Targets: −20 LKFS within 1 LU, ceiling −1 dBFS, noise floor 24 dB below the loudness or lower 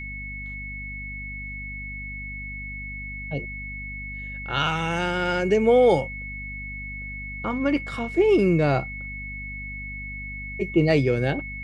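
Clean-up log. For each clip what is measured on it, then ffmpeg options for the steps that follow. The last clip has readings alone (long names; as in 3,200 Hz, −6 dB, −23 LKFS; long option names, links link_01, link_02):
mains hum 50 Hz; hum harmonics up to 250 Hz; level of the hum −35 dBFS; interfering tone 2,200 Hz; level of the tone −34 dBFS; integrated loudness −25.5 LKFS; sample peak −7.5 dBFS; target loudness −20.0 LKFS
→ -af "bandreject=frequency=50:width_type=h:width=4,bandreject=frequency=100:width_type=h:width=4,bandreject=frequency=150:width_type=h:width=4,bandreject=frequency=200:width_type=h:width=4,bandreject=frequency=250:width_type=h:width=4"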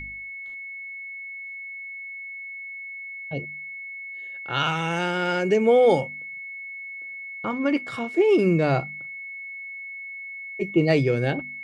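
mains hum none found; interfering tone 2,200 Hz; level of the tone −34 dBFS
→ -af "bandreject=frequency=2200:width=30"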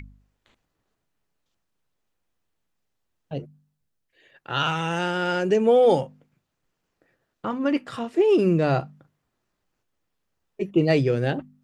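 interfering tone none found; integrated loudness −22.5 LKFS; sample peak −8.0 dBFS; target loudness −20.0 LKFS
→ -af "volume=2.5dB"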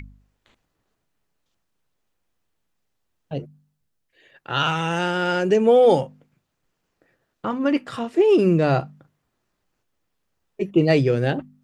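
integrated loudness −20.0 LKFS; sample peak −5.5 dBFS; background noise floor −75 dBFS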